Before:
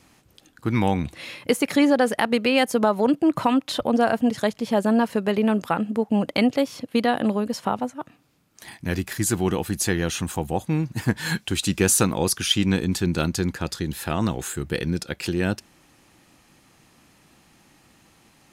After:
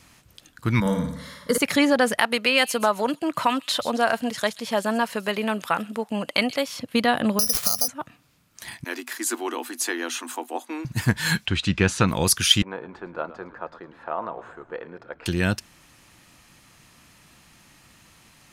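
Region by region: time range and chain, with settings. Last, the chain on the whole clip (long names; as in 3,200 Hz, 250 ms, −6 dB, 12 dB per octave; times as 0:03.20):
0:00.80–0:01.58: phaser with its sweep stopped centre 510 Hz, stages 8 + flutter between parallel walls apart 9.5 metres, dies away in 0.7 s + one half of a high-frequency compander decoder only
0:02.18–0:06.79: high-pass filter 440 Hz 6 dB per octave + delay with a high-pass on its return 131 ms, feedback 32%, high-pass 4,800 Hz, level −9 dB
0:07.39–0:07.88: comb filter 1.6 ms, depth 92% + downward compressor 8 to 1, threshold −31 dBFS + bad sample-rate conversion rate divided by 8×, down none, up zero stuff
0:08.84–0:10.85: Chebyshev high-pass with heavy ripple 240 Hz, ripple 6 dB + one half of a high-frequency compander encoder only
0:11.46–0:12.08: low-pass filter 3,100 Hz + one half of a high-frequency compander encoder only
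0:12.62–0:15.26: flat-topped band-pass 740 Hz, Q 1 + echo with shifted repeats 109 ms, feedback 56%, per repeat −55 Hz, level −15.5 dB
whole clip: parametric band 350 Hz −7.5 dB 1.8 octaves; notch filter 800 Hz, Q 12; level +4.5 dB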